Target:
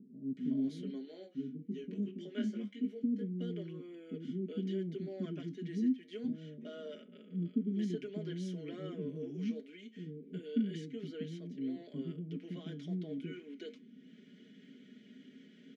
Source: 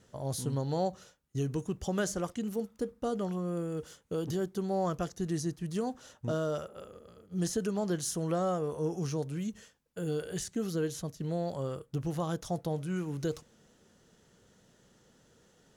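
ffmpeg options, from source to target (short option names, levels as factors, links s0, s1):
-filter_complex "[0:a]highpass=160,aemphasis=mode=reproduction:type=75kf,bandreject=f=1200:w=6.1,aecho=1:1:4.8:0.77,acompressor=mode=upward:threshold=0.00794:ratio=2.5,flanger=delay=5.2:depth=9.5:regen=-72:speed=0.28:shape=triangular,asplit=3[s0][s1][s2];[s0]bandpass=f=270:t=q:w=8,volume=1[s3];[s1]bandpass=f=2290:t=q:w=8,volume=0.501[s4];[s2]bandpass=f=3010:t=q:w=8,volume=0.355[s5];[s3][s4][s5]amix=inputs=3:normalize=0,asettb=1/sr,asplit=3[s6][s7][s8];[s6]atrim=end=0.684[s9];[s7]atrim=start=0.68:end=3.04,asetpts=PTS-STARTPTS,afade=t=in:d=0.004:c=qsin,afade=t=out:st=2.356:d=0.004:c=qsin,flanger=delay=18:depth=2.3:speed=1.7[s10];[s8]atrim=start=3.036[s11];[s9][s10]acrossfade=d=0.004:c1=hsin:c2=qsin[s12];[s12][s11]acrossfade=d=0.004:c1=qsin:c2=hsin,acrossover=split=360[s13][s14];[s14]adelay=370[s15];[s13][s15]amix=inputs=2:normalize=0,volume=5.31"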